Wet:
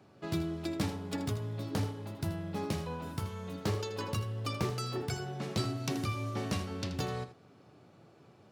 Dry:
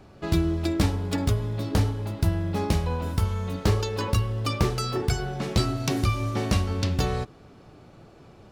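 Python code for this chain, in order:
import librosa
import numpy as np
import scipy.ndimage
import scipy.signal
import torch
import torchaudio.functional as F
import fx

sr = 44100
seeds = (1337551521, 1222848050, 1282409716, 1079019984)

p1 = scipy.signal.sosfilt(scipy.signal.butter(4, 100.0, 'highpass', fs=sr, output='sos'), x)
p2 = p1 + fx.echo_single(p1, sr, ms=80, db=-12.0, dry=0)
y = p2 * 10.0 ** (-8.5 / 20.0)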